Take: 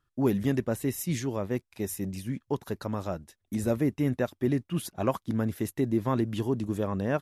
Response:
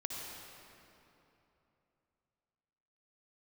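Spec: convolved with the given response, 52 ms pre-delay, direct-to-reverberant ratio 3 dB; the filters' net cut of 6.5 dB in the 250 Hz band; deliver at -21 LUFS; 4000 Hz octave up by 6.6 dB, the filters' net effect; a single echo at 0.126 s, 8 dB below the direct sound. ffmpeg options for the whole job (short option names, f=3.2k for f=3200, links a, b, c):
-filter_complex "[0:a]equalizer=f=250:t=o:g=-8.5,equalizer=f=4k:t=o:g=8.5,aecho=1:1:126:0.398,asplit=2[a][b];[1:a]atrim=start_sample=2205,adelay=52[c];[b][c]afir=irnorm=-1:irlink=0,volume=-4dB[d];[a][d]amix=inputs=2:normalize=0,volume=9.5dB"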